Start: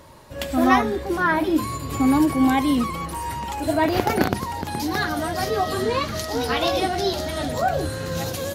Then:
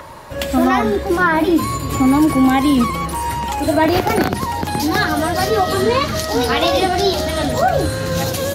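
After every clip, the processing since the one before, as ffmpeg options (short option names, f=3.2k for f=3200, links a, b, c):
-filter_complex "[0:a]acrossover=split=340|610|2100[a][b][c][d];[c]acompressor=mode=upward:threshold=-38dB:ratio=2.5[e];[a][b][e][d]amix=inputs=4:normalize=0,alimiter=limit=-13dB:level=0:latency=1:release=75,volume=7.5dB"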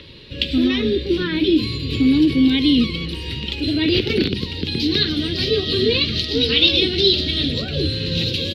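-af "firequalizer=gain_entry='entry(450,0);entry(700,-28);entry(2700,8);entry(3900,11);entry(6600,-18);entry(13000,-23)':delay=0.05:min_phase=1,volume=-1.5dB"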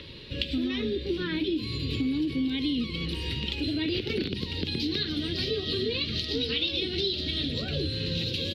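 -af "acompressor=threshold=-25dB:ratio=4,volume=-2.5dB"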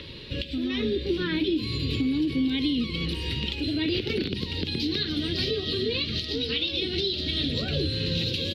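-af "alimiter=limit=-19dB:level=0:latency=1:release=405,volume=3dB"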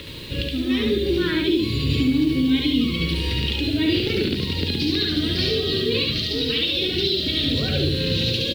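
-af "acrusher=bits=7:mix=0:aa=0.5,aecho=1:1:69.97|145.8:0.794|0.282,volume=3.5dB"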